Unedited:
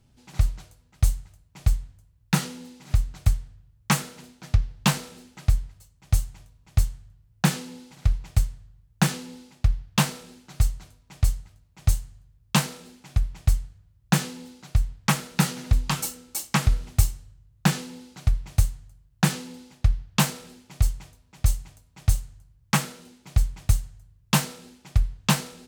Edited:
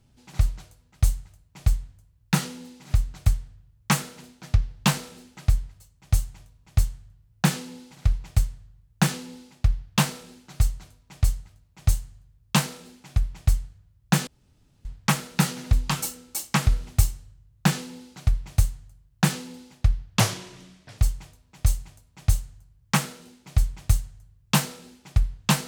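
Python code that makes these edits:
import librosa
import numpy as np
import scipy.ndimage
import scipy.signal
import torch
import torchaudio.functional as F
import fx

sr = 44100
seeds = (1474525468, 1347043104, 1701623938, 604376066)

y = fx.edit(x, sr, fx.room_tone_fill(start_s=14.27, length_s=0.58),
    fx.speed_span(start_s=20.2, length_s=0.58, speed=0.74), tone=tone)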